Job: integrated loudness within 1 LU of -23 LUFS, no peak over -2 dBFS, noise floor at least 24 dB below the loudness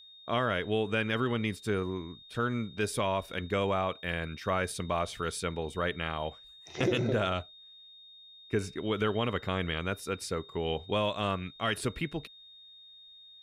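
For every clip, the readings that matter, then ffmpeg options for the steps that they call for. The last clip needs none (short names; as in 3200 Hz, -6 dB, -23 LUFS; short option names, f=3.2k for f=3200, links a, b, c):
steady tone 3700 Hz; tone level -51 dBFS; loudness -32.5 LUFS; peak -18.5 dBFS; loudness target -23.0 LUFS
-> -af "bandreject=f=3.7k:w=30"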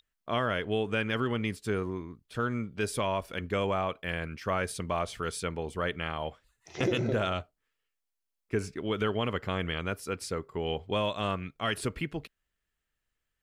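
steady tone none; loudness -32.5 LUFS; peak -18.5 dBFS; loudness target -23.0 LUFS
-> -af "volume=9.5dB"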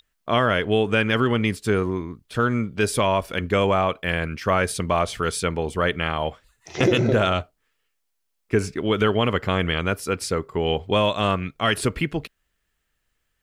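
loudness -23.0 LUFS; peak -9.0 dBFS; noise floor -74 dBFS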